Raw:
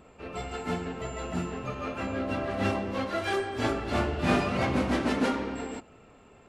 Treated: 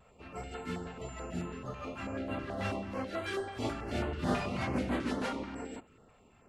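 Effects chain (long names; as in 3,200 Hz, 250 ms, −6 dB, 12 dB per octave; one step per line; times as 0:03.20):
pitch vibrato 0.56 Hz 14 cents
notch on a step sequencer 9.2 Hz 310–5,500 Hz
level −5.5 dB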